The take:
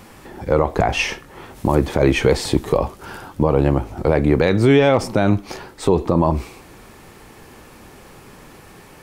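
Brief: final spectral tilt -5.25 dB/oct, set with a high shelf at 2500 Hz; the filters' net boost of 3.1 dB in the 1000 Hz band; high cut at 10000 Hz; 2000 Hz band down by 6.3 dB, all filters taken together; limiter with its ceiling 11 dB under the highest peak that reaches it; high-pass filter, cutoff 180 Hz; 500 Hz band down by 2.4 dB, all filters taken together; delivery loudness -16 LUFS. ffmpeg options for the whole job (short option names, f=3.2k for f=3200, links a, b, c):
-af "highpass=180,lowpass=10k,equalizer=f=500:t=o:g=-4,equalizer=f=1k:t=o:g=8,equalizer=f=2k:t=o:g=-7.5,highshelf=f=2.5k:g=-6.5,volume=10.5dB,alimiter=limit=-3.5dB:level=0:latency=1"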